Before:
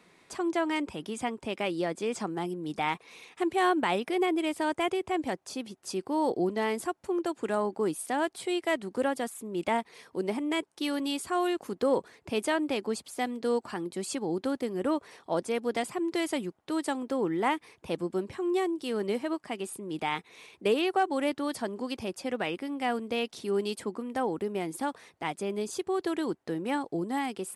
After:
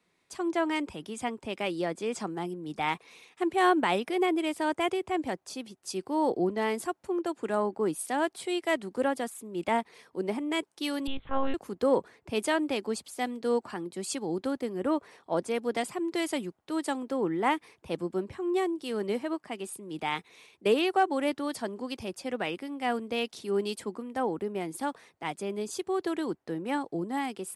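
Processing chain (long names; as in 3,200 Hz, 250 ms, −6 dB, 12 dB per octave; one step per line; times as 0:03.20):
0:11.07–0:11.54: one-pitch LPC vocoder at 8 kHz 270 Hz
multiband upward and downward expander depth 40%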